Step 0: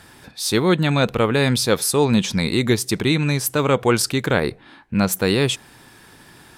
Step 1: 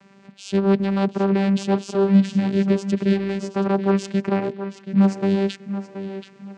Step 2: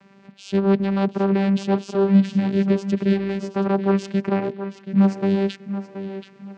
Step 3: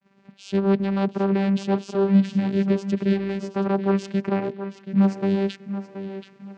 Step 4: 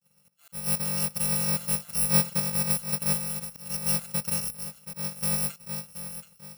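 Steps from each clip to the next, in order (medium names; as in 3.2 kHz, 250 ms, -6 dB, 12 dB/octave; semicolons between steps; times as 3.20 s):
vocoder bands 8, saw 196 Hz; tape echo 729 ms, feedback 34%, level -9.5 dB, low-pass 4.7 kHz
distance through air 69 m
expander -45 dBFS; trim -2 dB
bit-reversed sample order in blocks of 128 samples; slow attack 302 ms; trim -5.5 dB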